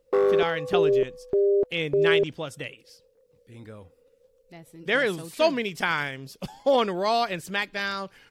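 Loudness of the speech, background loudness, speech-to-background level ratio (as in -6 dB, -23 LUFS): -27.0 LUFS, -24.0 LUFS, -3.0 dB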